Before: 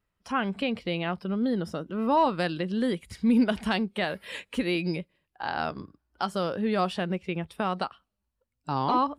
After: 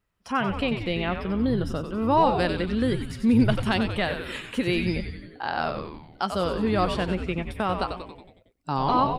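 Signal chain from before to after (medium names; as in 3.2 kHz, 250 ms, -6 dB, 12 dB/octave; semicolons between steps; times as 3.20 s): frequency-shifting echo 92 ms, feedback 58%, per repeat -120 Hz, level -7 dB; trim +2 dB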